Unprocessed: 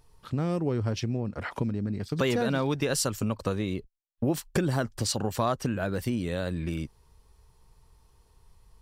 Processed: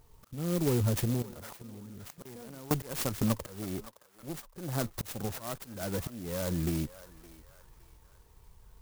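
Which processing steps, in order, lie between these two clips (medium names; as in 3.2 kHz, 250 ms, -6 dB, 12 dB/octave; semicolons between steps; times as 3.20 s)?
Chebyshev shaper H 4 -15 dB, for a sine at -14 dBFS; slow attack 451 ms; 1.22–2.71 s: level held to a coarse grid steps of 24 dB; on a send: band-passed feedback delay 565 ms, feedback 49%, band-pass 1.5 kHz, level -12.5 dB; on the sum: sampling jitter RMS 0.11 ms; trim +2 dB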